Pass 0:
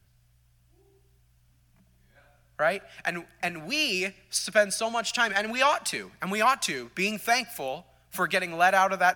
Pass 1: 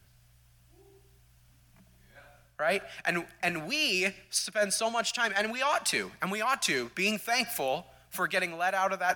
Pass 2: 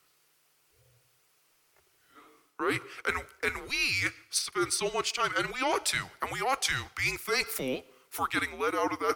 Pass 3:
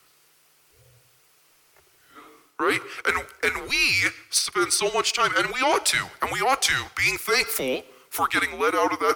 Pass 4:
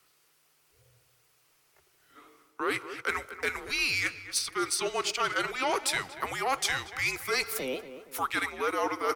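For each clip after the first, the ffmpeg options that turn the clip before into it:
ffmpeg -i in.wav -af "lowshelf=frequency=230:gain=-4.5,areverse,acompressor=threshold=-30dB:ratio=12,areverse,volume=5.5dB" out.wav
ffmpeg -i in.wav -af "highpass=540,afreqshift=-270" out.wav
ffmpeg -i in.wav -filter_complex "[0:a]acrossover=split=310|4000[link_01][link_02][link_03];[link_01]alimiter=level_in=18dB:limit=-24dB:level=0:latency=1:release=323,volume=-18dB[link_04];[link_04][link_02][link_03]amix=inputs=3:normalize=0,asoftclip=type=tanh:threshold=-18.5dB,volume=8.5dB" out.wav
ffmpeg -i in.wav -filter_complex "[0:a]asplit=2[link_01][link_02];[link_02]adelay=234,lowpass=frequency=1800:poles=1,volume=-11.5dB,asplit=2[link_03][link_04];[link_04]adelay=234,lowpass=frequency=1800:poles=1,volume=0.44,asplit=2[link_05][link_06];[link_06]adelay=234,lowpass=frequency=1800:poles=1,volume=0.44,asplit=2[link_07][link_08];[link_08]adelay=234,lowpass=frequency=1800:poles=1,volume=0.44[link_09];[link_01][link_03][link_05][link_07][link_09]amix=inputs=5:normalize=0,volume=-7.5dB" out.wav

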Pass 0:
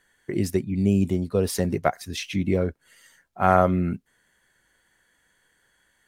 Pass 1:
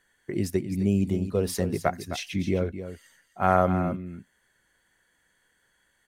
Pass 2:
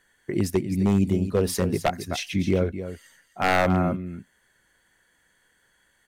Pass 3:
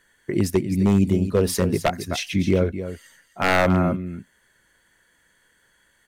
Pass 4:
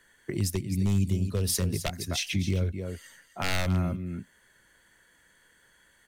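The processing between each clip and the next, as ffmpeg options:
ffmpeg -i in.wav -af "aecho=1:1:260:0.282,volume=-3dB" out.wav
ffmpeg -i in.wav -af "aeval=exprs='0.158*(abs(mod(val(0)/0.158+3,4)-2)-1)':channel_layout=same,volume=3.5dB" out.wav
ffmpeg -i in.wav -af "bandreject=frequency=760:width=12,volume=3dB" out.wav
ffmpeg -i in.wav -filter_complex "[0:a]acrossover=split=130|3000[link_01][link_02][link_03];[link_02]acompressor=threshold=-33dB:ratio=6[link_04];[link_01][link_04][link_03]amix=inputs=3:normalize=0" out.wav

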